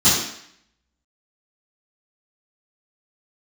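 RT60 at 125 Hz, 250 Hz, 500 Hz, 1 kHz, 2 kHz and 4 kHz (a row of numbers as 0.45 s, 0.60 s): 0.55 s, 0.65 s, 0.65 s, 0.70 s, 0.75 s, 0.70 s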